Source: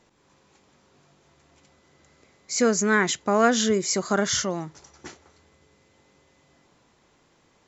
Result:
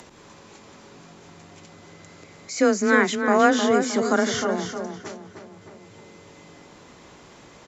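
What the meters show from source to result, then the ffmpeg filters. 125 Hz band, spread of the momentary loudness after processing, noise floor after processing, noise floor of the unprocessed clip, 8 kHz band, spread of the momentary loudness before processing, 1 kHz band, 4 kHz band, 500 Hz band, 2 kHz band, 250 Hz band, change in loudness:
-2.5 dB, 17 LU, -49 dBFS, -63 dBFS, n/a, 10 LU, +3.5 dB, -1.5 dB, +3.0 dB, +3.0 dB, +3.0 dB, +1.5 dB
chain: -filter_complex "[0:a]asplit=2[a][b];[b]adelay=309,lowpass=f=1.9k:p=1,volume=-6dB,asplit=2[c][d];[d]adelay=309,lowpass=f=1.9k:p=1,volume=0.43,asplit=2[e][f];[f]adelay=309,lowpass=f=1.9k:p=1,volume=0.43,asplit=2[g][h];[h]adelay=309,lowpass=f=1.9k:p=1,volume=0.43,asplit=2[i][j];[j]adelay=309,lowpass=f=1.9k:p=1,volume=0.43[k];[c][e][g][i][k]amix=inputs=5:normalize=0[l];[a][l]amix=inputs=2:normalize=0,acrossover=split=3400[m][n];[n]acompressor=threshold=-33dB:ratio=4:attack=1:release=60[o];[m][o]amix=inputs=2:normalize=0,afreqshift=21,acompressor=mode=upward:threshold=-38dB:ratio=2.5,aresample=32000,aresample=44100,volume=2dB"

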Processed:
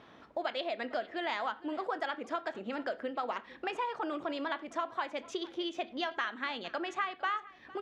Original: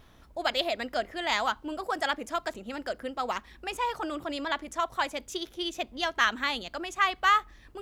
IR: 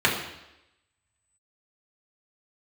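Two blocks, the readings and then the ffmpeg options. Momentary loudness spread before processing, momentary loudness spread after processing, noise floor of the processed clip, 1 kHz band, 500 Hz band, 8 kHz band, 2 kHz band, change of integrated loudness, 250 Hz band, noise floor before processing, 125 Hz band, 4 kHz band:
11 LU, 4 LU, -57 dBFS, -6.5 dB, -3.0 dB, -14.5 dB, -8.0 dB, -6.5 dB, -2.0 dB, -56 dBFS, n/a, -9.0 dB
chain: -filter_complex "[0:a]highshelf=f=3.7k:g=-9,acompressor=threshold=-38dB:ratio=5,highpass=230,lowpass=4.7k,aecho=1:1:457:0.0944,asplit=2[a][b];[1:a]atrim=start_sample=2205,afade=t=out:st=0.14:d=0.01,atrim=end_sample=6615,adelay=24[c];[b][c]afir=irnorm=-1:irlink=0,volume=-30.5dB[d];[a][d]amix=inputs=2:normalize=0,volume=5.5dB"

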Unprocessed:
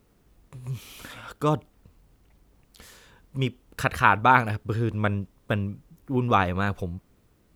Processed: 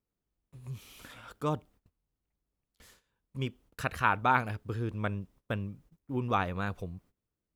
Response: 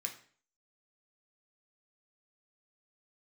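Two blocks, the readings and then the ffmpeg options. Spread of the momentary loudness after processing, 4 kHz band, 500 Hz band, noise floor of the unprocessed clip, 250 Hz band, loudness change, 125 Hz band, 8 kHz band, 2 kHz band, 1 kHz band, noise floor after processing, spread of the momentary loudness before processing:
21 LU, -8.0 dB, -8.0 dB, -63 dBFS, -8.0 dB, -7.5 dB, -8.0 dB, -8.0 dB, -8.0 dB, -8.0 dB, under -85 dBFS, 21 LU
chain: -af "agate=range=-18dB:threshold=-49dB:ratio=16:detection=peak,volume=-8dB"

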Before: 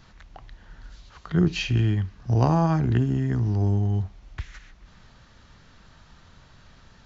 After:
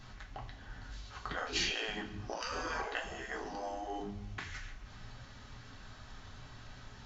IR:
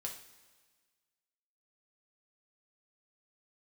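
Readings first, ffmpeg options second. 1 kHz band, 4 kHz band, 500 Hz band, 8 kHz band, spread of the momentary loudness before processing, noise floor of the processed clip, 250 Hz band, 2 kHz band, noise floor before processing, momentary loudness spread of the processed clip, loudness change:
-8.0 dB, -1.0 dB, -10.5 dB, n/a, 17 LU, -53 dBFS, -20.5 dB, -1.0 dB, -54 dBFS, 18 LU, -16.0 dB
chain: -filter_complex "[1:a]atrim=start_sample=2205,asetrate=66150,aresample=44100[a];[0:a][a]afir=irnorm=-1:irlink=0,aeval=exprs='0.237*(cos(1*acos(clip(val(0)/0.237,-1,1)))-cos(1*PI/2))+0.0188*(cos(2*acos(clip(val(0)/0.237,-1,1)))-cos(2*PI/2))+0.00188*(cos(7*acos(clip(val(0)/0.237,-1,1)))-cos(7*PI/2))+0.00133*(cos(8*acos(clip(val(0)/0.237,-1,1)))-cos(8*PI/2))':c=same,afftfilt=real='re*lt(hypot(re,im),0.0501)':imag='im*lt(hypot(re,im),0.0501)':win_size=1024:overlap=0.75,volume=7dB"

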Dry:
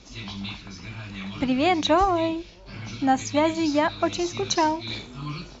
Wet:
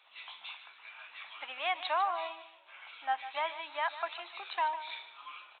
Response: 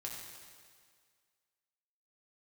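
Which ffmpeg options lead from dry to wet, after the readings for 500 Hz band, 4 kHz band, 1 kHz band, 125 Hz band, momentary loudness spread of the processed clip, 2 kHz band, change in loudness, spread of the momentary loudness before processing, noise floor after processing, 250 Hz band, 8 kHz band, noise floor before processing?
-16.5 dB, -10.5 dB, -8.5 dB, under -40 dB, 17 LU, -6.5 dB, -11.5 dB, 17 LU, -59 dBFS, -39.5 dB, n/a, -46 dBFS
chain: -af "highpass=f=810:w=0.5412,highpass=f=810:w=1.3066,aecho=1:1:150|300|450:0.224|0.0649|0.0188,aresample=8000,aresample=44100,volume=-6.5dB"

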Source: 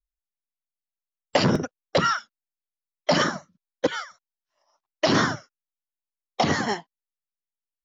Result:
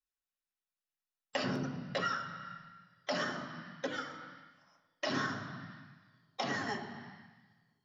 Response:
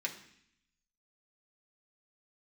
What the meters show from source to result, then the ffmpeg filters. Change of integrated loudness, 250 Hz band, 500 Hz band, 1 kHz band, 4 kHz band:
-13.5 dB, -13.0 dB, -14.5 dB, -12.0 dB, -12.5 dB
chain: -filter_complex "[0:a]bandreject=f=50:t=h:w=6,bandreject=f=100:t=h:w=6,bandreject=f=150:t=h:w=6,bandreject=f=200:t=h:w=6[a];[1:a]atrim=start_sample=2205,asetrate=31311,aresample=44100[b];[a][b]afir=irnorm=-1:irlink=0,acompressor=threshold=-39dB:ratio=2,volume=-4dB"

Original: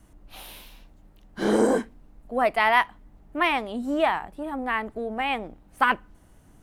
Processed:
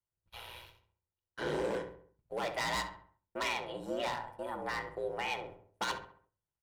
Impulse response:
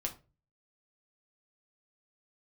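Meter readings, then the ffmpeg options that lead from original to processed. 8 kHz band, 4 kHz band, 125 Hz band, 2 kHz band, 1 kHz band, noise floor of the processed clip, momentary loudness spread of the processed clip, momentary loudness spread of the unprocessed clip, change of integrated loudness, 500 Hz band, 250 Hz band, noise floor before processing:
-4.0 dB, -6.0 dB, -6.0 dB, -12.5 dB, -13.5 dB, under -85 dBFS, 15 LU, 21 LU, -12.5 dB, -11.0 dB, -16.0 dB, -55 dBFS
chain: -filter_complex "[0:a]acrossover=split=3600[a][b];[b]acompressor=threshold=-57dB:ratio=6[c];[a][c]amix=inputs=2:normalize=0,equalizer=f=210:t=o:w=1.5:g=-13.5,aeval=exprs='val(0)*sin(2*PI*59*n/s)':c=same,aecho=1:1:2.1:0.38,volume=24dB,asoftclip=hard,volume=-24dB,highpass=f=140:p=1,acrossover=split=310|3000[d][e][f];[e]acompressor=threshold=-39dB:ratio=3[g];[d][g][f]amix=inputs=3:normalize=0,highshelf=f=11k:g=-3.5,agate=range=-34dB:threshold=-52dB:ratio=16:detection=peak,asplit=2[h][i];[i]adelay=67,lowpass=f=2.1k:p=1,volume=-8.5dB,asplit=2[j][k];[k]adelay=67,lowpass=f=2.1k:p=1,volume=0.46,asplit=2[l][m];[m]adelay=67,lowpass=f=2.1k:p=1,volume=0.46,asplit=2[n][o];[o]adelay=67,lowpass=f=2.1k:p=1,volume=0.46,asplit=2[p][q];[q]adelay=67,lowpass=f=2.1k:p=1,volume=0.46[r];[h][j][l][n][p][r]amix=inputs=6:normalize=0,asplit=2[s][t];[1:a]atrim=start_sample=2205[u];[t][u]afir=irnorm=-1:irlink=0,volume=-0.5dB[v];[s][v]amix=inputs=2:normalize=0,volume=-4.5dB"

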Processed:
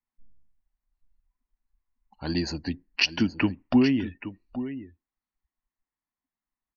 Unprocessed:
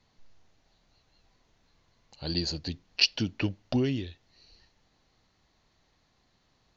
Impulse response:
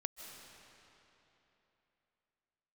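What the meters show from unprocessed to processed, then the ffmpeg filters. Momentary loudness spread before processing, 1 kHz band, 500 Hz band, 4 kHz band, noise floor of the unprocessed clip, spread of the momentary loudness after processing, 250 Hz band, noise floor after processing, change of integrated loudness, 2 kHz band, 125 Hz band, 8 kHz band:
12 LU, +8.0 dB, +3.0 dB, -2.0 dB, -70 dBFS, 15 LU, +8.0 dB, under -85 dBFS, +3.0 dB, +5.5 dB, +0.5 dB, n/a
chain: -af "equalizer=f=125:t=o:w=1:g=-6,equalizer=f=250:t=o:w=1:g=8,equalizer=f=500:t=o:w=1:g=-6,equalizer=f=1k:t=o:w=1:g=8,equalizer=f=2k:t=o:w=1:g=7,equalizer=f=4k:t=o:w=1:g=-9,aecho=1:1:824:0.237,afftdn=nr=33:nf=-48,volume=3dB"

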